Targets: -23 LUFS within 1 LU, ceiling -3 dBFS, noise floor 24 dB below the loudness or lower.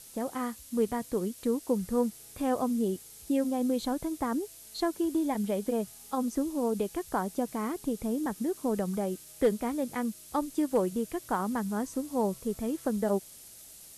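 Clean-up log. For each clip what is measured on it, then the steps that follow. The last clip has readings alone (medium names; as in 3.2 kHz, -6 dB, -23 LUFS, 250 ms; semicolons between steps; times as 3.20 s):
noise floor -51 dBFS; noise floor target -56 dBFS; loudness -31.5 LUFS; peak level -16.5 dBFS; loudness target -23.0 LUFS
-> noise print and reduce 6 dB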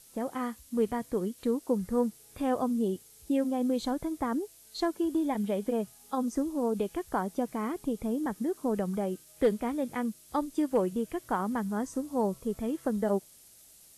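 noise floor -56 dBFS; loudness -31.5 LUFS; peak level -16.5 dBFS; loudness target -23.0 LUFS
-> trim +8.5 dB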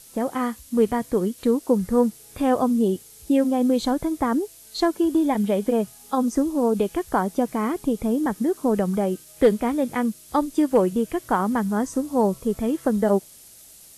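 loudness -23.0 LUFS; peak level -8.0 dBFS; noise floor -48 dBFS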